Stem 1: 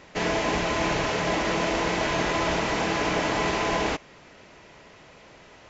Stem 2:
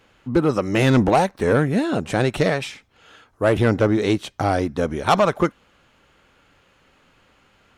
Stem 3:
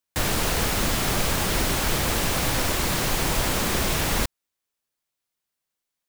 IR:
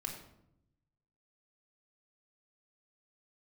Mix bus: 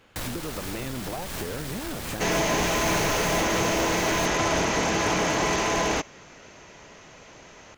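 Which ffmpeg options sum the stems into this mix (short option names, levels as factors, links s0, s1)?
-filter_complex "[0:a]equalizer=f=6300:t=o:w=0.25:g=10.5,asoftclip=type=hard:threshold=0.0891,adelay=2050,volume=1.19[s0];[1:a]acompressor=threshold=0.0501:ratio=4,volume=0.944[s1];[2:a]aeval=exprs='0.316*sin(PI/2*3.16*val(0)/0.316)':c=same,volume=0.158[s2];[s1][s2]amix=inputs=2:normalize=0,acompressor=threshold=0.0316:ratio=5,volume=1[s3];[s0][s3]amix=inputs=2:normalize=0"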